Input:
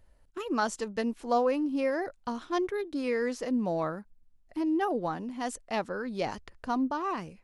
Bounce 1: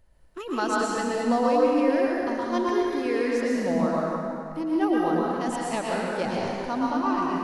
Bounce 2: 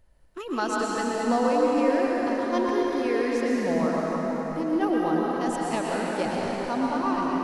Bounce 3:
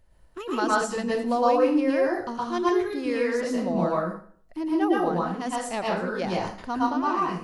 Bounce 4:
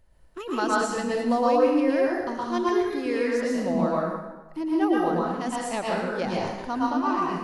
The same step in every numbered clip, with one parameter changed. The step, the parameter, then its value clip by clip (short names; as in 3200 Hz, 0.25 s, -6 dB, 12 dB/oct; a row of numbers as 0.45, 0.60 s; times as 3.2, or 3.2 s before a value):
plate-style reverb, RT60: 2.4, 5, 0.51, 1.1 s